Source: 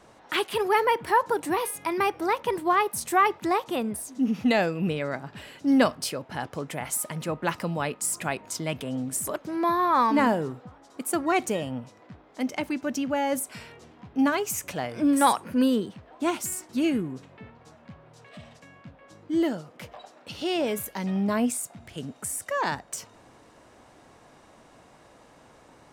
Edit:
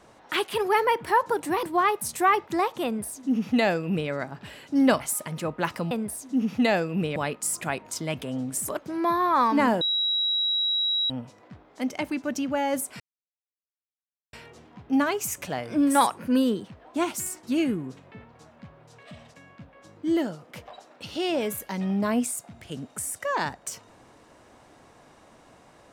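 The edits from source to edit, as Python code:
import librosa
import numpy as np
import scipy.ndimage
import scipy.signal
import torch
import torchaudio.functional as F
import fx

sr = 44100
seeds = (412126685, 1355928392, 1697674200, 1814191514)

y = fx.edit(x, sr, fx.cut(start_s=1.63, length_s=0.92),
    fx.duplicate(start_s=3.77, length_s=1.25, to_s=7.75),
    fx.cut(start_s=5.92, length_s=0.92),
    fx.bleep(start_s=10.4, length_s=1.29, hz=3870.0, db=-22.0),
    fx.insert_silence(at_s=13.59, length_s=1.33), tone=tone)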